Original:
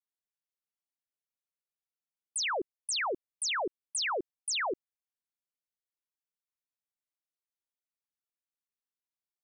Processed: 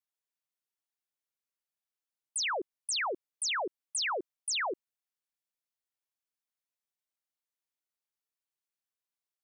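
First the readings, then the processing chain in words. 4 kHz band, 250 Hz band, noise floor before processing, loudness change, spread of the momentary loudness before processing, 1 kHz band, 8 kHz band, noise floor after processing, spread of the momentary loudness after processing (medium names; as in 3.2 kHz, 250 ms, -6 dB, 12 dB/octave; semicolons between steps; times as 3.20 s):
0.0 dB, -3.0 dB, under -85 dBFS, 0.0 dB, 4 LU, -0.5 dB, 0.0 dB, under -85 dBFS, 5 LU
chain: bass shelf 220 Hz -10 dB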